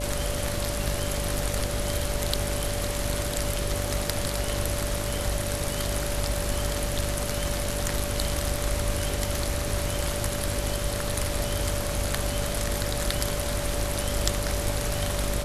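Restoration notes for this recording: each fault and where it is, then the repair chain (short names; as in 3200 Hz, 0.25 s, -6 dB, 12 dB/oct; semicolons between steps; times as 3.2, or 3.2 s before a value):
buzz 50 Hz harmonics 13 -32 dBFS
tone 580 Hz -34 dBFS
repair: notch 580 Hz, Q 30; de-hum 50 Hz, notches 13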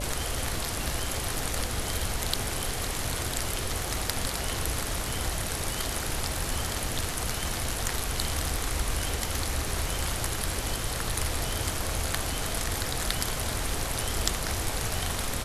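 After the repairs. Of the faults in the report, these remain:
none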